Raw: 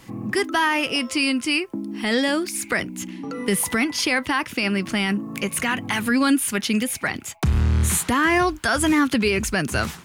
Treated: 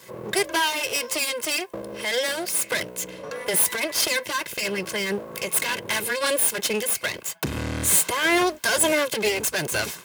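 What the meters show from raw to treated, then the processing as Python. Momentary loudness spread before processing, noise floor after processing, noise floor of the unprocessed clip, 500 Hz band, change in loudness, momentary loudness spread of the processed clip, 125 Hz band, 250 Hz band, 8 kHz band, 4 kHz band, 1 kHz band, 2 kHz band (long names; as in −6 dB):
7 LU, −42 dBFS, −41 dBFS, +0.5 dB, −1.5 dB, 9 LU, −11.0 dB, −10.5 dB, +4.0 dB, +0.5 dB, −3.5 dB, −2.5 dB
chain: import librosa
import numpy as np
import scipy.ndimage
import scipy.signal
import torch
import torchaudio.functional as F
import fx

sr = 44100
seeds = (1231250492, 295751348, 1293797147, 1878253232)

y = fx.lower_of_two(x, sr, delay_ms=1.9)
y = fx.dynamic_eq(y, sr, hz=1200.0, q=2.6, threshold_db=-39.0, ratio=4.0, max_db=-5)
y = scipy.signal.sosfilt(scipy.signal.butter(2, 190.0, 'highpass', fs=sr, output='sos'), y)
y = fx.high_shelf(y, sr, hz=7500.0, db=8.0)
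y = y * 10.0 ** (1.0 / 20.0)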